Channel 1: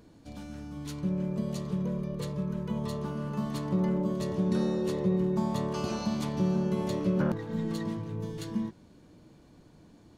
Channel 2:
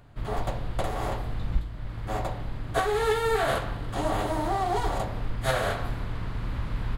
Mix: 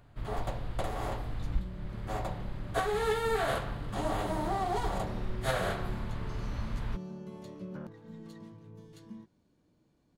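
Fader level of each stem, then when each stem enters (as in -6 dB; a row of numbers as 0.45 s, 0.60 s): -15.0 dB, -5.0 dB; 0.55 s, 0.00 s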